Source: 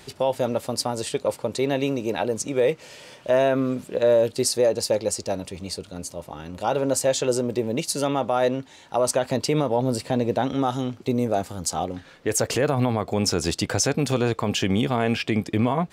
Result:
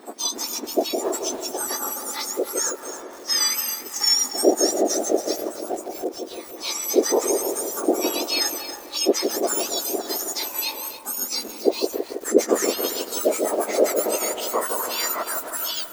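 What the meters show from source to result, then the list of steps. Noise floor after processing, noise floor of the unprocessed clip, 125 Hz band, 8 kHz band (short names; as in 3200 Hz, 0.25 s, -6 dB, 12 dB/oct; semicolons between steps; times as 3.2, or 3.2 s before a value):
-39 dBFS, -49 dBFS, under -25 dB, +6.0 dB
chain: spectrum mirrored in octaves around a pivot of 1800 Hz; dark delay 0.161 s, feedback 64%, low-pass 1200 Hz, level -5.5 dB; lo-fi delay 0.277 s, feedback 35%, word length 6-bit, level -10.5 dB; gain +2 dB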